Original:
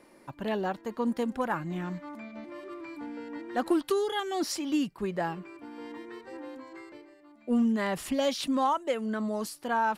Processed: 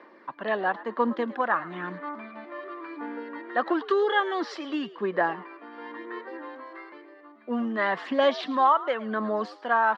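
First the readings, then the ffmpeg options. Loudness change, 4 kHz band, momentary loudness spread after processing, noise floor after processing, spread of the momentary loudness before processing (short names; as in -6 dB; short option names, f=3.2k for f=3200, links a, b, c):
+3.0 dB, +0.5 dB, 17 LU, -52 dBFS, 16 LU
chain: -filter_complex "[0:a]aphaser=in_gain=1:out_gain=1:delay=1.6:decay=0.34:speed=0.97:type=sinusoidal,highpass=f=240:w=0.5412,highpass=f=240:w=1.3066,equalizer=f=270:t=q:w=4:g=-4,equalizer=f=1.1k:t=q:w=4:g=8,equalizer=f=1.7k:t=q:w=4:g=8,equalizer=f=2.5k:t=q:w=4:g=-4,lowpass=f=3.8k:w=0.5412,lowpass=f=3.8k:w=1.3066,asplit=4[a][b][c][d];[b]adelay=109,afreqshift=95,volume=-17.5dB[e];[c]adelay=218,afreqshift=190,volume=-27.7dB[f];[d]adelay=327,afreqshift=285,volume=-37.8dB[g];[a][e][f][g]amix=inputs=4:normalize=0,volume=2.5dB"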